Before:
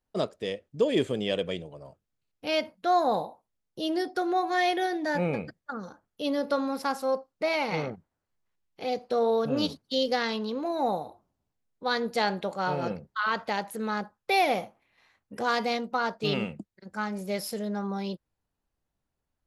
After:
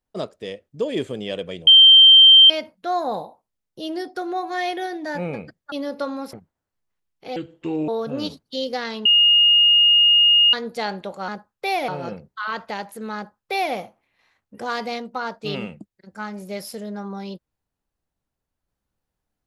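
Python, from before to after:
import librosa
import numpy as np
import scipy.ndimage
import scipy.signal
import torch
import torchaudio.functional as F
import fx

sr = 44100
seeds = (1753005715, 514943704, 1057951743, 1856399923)

y = fx.edit(x, sr, fx.bleep(start_s=1.67, length_s=0.83, hz=3140.0, db=-6.0),
    fx.cut(start_s=5.72, length_s=0.51),
    fx.cut(start_s=6.84, length_s=1.05),
    fx.speed_span(start_s=8.92, length_s=0.35, speed=0.67),
    fx.bleep(start_s=10.44, length_s=1.48, hz=2850.0, db=-11.0),
    fx.duplicate(start_s=13.94, length_s=0.6, to_s=12.67), tone=tone)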